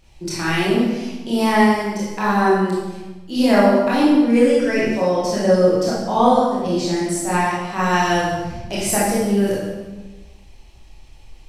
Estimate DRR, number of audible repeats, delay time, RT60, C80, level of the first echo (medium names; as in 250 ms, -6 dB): -8.0 dB, no echo, no echo, 1.2 s, 2.5 dB, no echo